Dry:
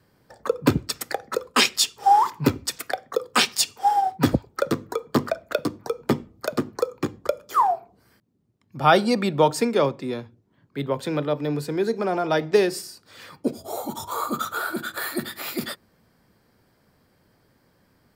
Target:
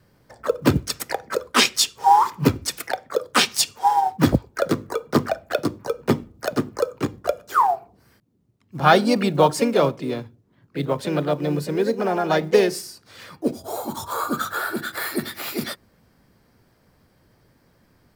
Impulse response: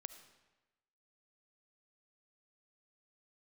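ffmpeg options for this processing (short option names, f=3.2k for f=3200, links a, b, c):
-filter_complex "[0:a]lowshelf=f=96:g=6.5,asplit=2[a][b];[b]asetrate=52444,aresample=44100,atempo=0.840896,volume=-8dB[c];[a][c]amix=inputs=2:normalize=0,acrusher=bits=9:mode=log:mix=0:aa=0.000001,volume=1dB"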